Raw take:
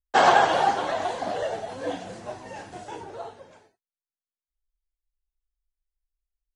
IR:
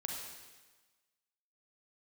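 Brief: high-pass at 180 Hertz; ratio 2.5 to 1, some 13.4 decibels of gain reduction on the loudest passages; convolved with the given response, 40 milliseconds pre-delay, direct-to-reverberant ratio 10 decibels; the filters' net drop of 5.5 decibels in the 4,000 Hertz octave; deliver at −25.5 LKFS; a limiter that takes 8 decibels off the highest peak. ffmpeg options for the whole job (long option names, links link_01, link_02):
-filter_complex "[0:a]highpass=180,equalizer=frequency=4000:width_type=o:gain=-7.5,acompressor=threshold=-34dB:ratio=2.5,alimiter=level_in=2.5dB:limit=-24dB:level=0:latency=1,volume=-2.5dB,asplit=2[link_01][link_02];[1:a]atrim=start_sample=2205,adelay=40[link_03];[link_02][link_03]afir=irnorm=-1:irlink=0,volume=-10.5dB[link_04];[link_01][link_04]amix=inputs=2:normalize=0,volume=11.5dB"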